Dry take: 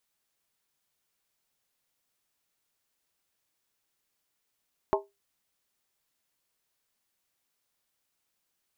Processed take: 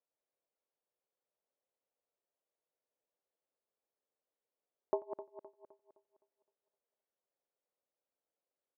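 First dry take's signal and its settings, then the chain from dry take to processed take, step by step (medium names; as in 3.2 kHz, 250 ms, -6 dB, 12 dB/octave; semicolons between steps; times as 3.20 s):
skin hit, lowest mode 400 Hz, modes 5, decay 0.21 s, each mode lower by 1.5 dB, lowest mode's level -21 dB
backward echo that repeats 129 ms, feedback 63%, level -10 dB; band-pass filter 520 Hz, Q 2.6; delay 89 ms -22 dB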